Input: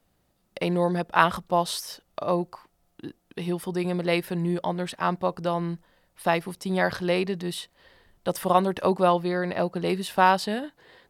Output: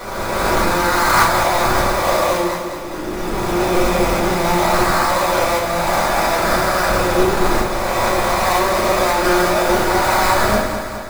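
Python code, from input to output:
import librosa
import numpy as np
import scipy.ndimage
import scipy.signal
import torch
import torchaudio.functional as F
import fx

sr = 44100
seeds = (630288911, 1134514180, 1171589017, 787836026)

p1 = fx.spec_swells(x, sr, rise_s=2.32)
p2 = fx.highpass(p1, sr, hz=810.0, slope=6)
p3 = fx.over_compress(p2, sr, threshold_db=-29.0, ratio=-0.5)
p4 = p2 + (p3 * librosa.db_to_amplitude(2.0))
p5 = fx.sample_hold(p4, sr, seeds[0], rate_hz=3000.0, jitter_pct=20)
p6 = p5 + fx.echo_feedback(p5, sr, ms=208, feedback_pct=57, wet_db=-8.5, dry=0)
p7 = fx.room_shoebox(p6, sr, seeds[1], volume_m3=160.0, walls='furnished', distance_m=4.8)
y = p7 * librosa.db_to_amplitude(-7.0)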